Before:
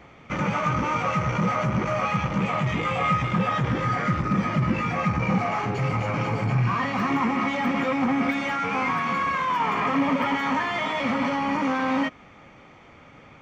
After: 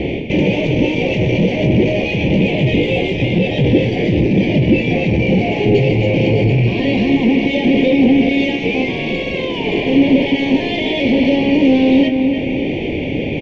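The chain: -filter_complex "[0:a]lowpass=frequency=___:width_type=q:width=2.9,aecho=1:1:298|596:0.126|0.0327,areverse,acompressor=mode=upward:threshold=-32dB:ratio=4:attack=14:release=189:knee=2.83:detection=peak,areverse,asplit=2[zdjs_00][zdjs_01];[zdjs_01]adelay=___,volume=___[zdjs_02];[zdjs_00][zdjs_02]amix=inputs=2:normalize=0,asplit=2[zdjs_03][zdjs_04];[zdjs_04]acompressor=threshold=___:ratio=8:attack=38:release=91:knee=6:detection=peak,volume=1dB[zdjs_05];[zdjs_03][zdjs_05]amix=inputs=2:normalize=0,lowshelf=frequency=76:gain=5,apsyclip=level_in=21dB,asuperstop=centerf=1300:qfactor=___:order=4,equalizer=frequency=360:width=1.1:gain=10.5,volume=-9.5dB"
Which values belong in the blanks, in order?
2600, 27, -12.5dB, -34dB, 0.53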